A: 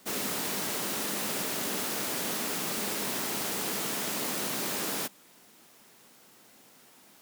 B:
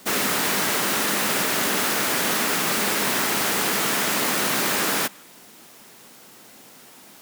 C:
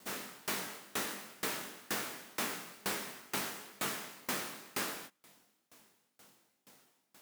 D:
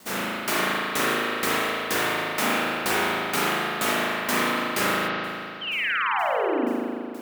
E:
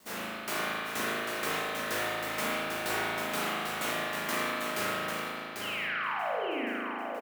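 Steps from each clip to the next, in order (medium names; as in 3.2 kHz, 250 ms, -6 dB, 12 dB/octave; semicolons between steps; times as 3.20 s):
dynamic bell 1.6 kHz, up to +6 dB, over -52 dBFS, Q 0.81; in parallel at -2.5 dB: peak limiter -25.5 dBFS, peak gain reduction 8 dB; on the sum: trim +5 dB
chorus 2.1 Hz, delay 19.5 ms, depth 4.7 ms; sawtooth tremolo in dB decaying 2.1 Hz, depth 28 dB; trim -6.5 dB
painted sound fall, 5.61–6.66 s, 220–3200 Hz -41 dBFS; spring tank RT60 2.5 s, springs 37 ms, chirp 55 ms, DRR -8 dB; trim +8.5 dB
feedback comb 56 Hz, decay 0.22 s, harmonics all, mix 90%; delay 795 ms -5.5 dB; trim -3.5 dB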